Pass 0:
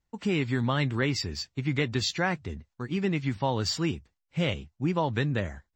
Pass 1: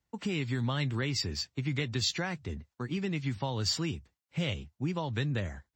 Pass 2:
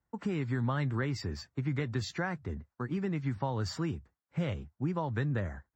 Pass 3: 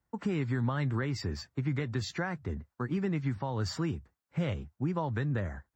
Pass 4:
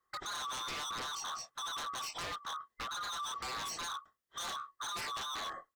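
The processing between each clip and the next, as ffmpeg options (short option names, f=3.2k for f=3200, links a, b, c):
-filter_complex "[0:a]highpass=56,acrossover=split=130|3000[a][b][c];[b]acompressor=threshold=-34dB:ratio=3[d];[a][d][c]amix=inputs=3:normalize=0"
-af "highshelf=f=2.1k:t=q:w=1.5:g=-10"
-af "alimiter=limit=-23.5dB:level=0:latency=1:release=218,volume=2dB"
-filter_complex "[0:a]afftfilt=real='real(if(lt(b,960),b+48*(1-2*mod(floor(b/48),2)),b),0)':imag='imag(if(lt(b,960),b+48*(1-2*mod(floor(b/48),2)),b),0)':win_size=2048:overlap=0.75,asplit=2[a][b];[b]adelay=24,volume=-7dB[c];[a][c]amix=inputs=2:normalize=0,aeval=exprs='0.0211*(abs(mod(val(0)/0.0211+3,4)-2)-1)':c=same,volume=-1.5dB"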